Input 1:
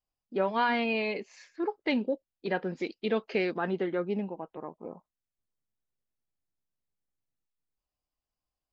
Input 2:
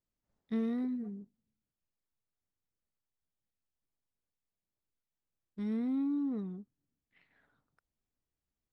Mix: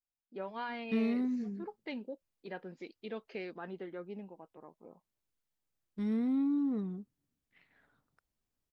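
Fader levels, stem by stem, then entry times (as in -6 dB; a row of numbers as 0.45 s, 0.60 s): -13.0 dB, +2.0 dB; 0.00 s, 0.40 s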